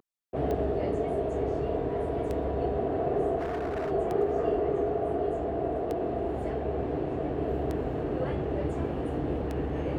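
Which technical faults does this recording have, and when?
tick 33 1/3 rpm -21 dBFS
3.38–3.92 s: clipped -28.5 dBFS

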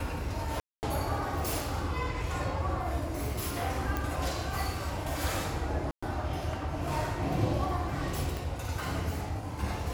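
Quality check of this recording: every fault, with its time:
0.60–0.83 s: dropout 229 ms
3.97 s: pop
5.91–6.03 s: dropout 115 ms
8.37 s: pop

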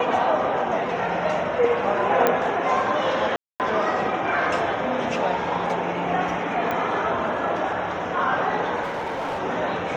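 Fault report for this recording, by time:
2.27 s: pop -5 dBFS
3.36–3.60 s: dropout 238 ms
6.71 s: pop -14 dBFS
8.82–9.40 s: clipped -24 dBFS

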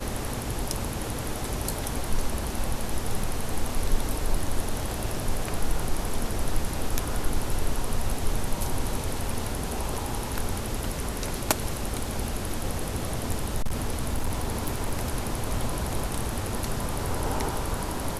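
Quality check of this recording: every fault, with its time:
3.23 s: dropout 2.8 ms
13.56–15.10 s: clipped -21 dBFS

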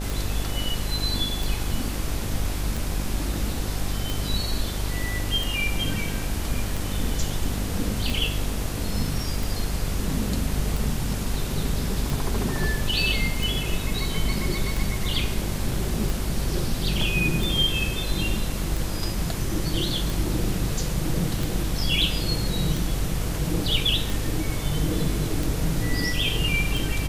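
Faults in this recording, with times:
buzz 50 Hz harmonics 16 -30 dBFS
tick 45 rpm

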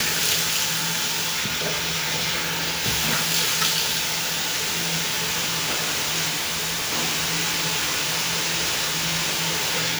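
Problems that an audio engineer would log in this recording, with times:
6.28–6.93 s: clipped -22 dBFS

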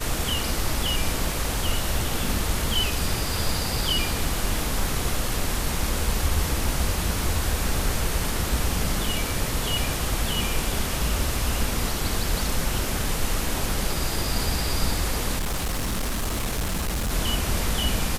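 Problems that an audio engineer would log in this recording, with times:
15.38–17.12 s: clipped -22.5 dBFS

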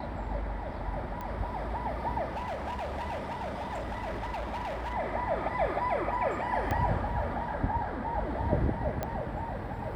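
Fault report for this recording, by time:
1.21 s: pop -25 dBFS
2.28–4.94 s: clipped -32 dBFS
6.71 s: pop -18 dBFS
9.03 s: pop -18 dBFS

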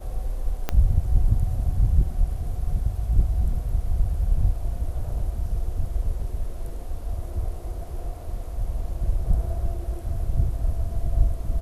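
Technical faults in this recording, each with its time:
0.69 s: pop -10 dBFS

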